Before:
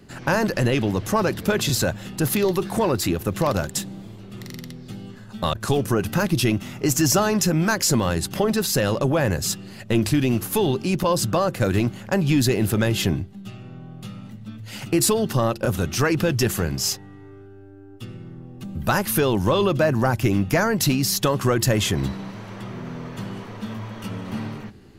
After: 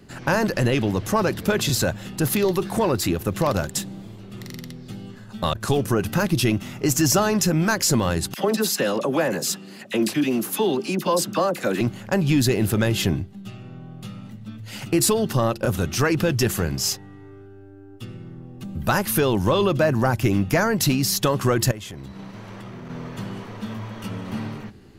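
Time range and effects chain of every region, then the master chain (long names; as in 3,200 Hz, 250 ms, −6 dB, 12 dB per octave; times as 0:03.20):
0:08.34–0:11.81: high-pass filter 190 Hz 24 dB per octave + all-pass dispersion lows, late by 40 ms, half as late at 1,300 Hz
0:21.71–0:22.90: transient designer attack −11 dB, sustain −6 dB + downward compressor, threshold −33 dBFS
whole clip: no processing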